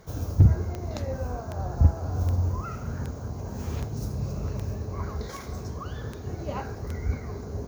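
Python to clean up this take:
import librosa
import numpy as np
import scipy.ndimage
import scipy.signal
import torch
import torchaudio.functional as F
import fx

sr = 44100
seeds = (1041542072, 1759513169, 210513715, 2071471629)

y = fx.fix_declip(x, sr, threshold_db=-9.5)
y = fx.fix_declick_ar(y, sr, threshold=10.0)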